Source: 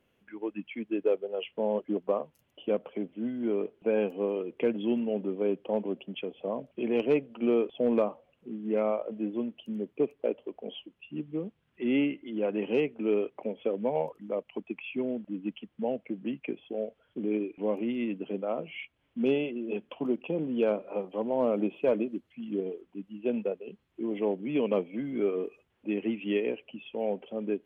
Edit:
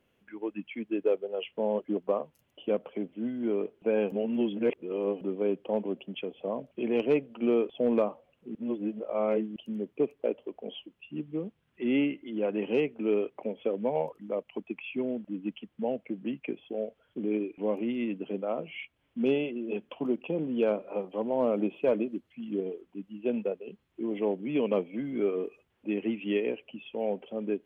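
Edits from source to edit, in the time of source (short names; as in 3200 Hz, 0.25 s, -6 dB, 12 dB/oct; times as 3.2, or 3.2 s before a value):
4.12–5.21 reverse
8.55–9.56 reverse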